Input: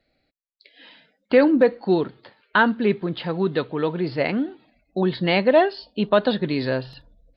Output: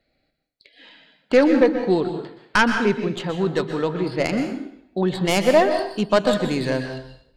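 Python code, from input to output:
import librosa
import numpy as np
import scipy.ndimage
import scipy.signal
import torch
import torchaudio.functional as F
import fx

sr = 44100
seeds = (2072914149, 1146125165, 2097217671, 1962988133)

y = fx.tracing_dist(x, sr, depth_ms=0.13)
y = fx.rev_plate(y, sr, seeds[0], rt60_s=0.66, hf_ratio=0.9, predelay_ms=110, drr_db=6.5)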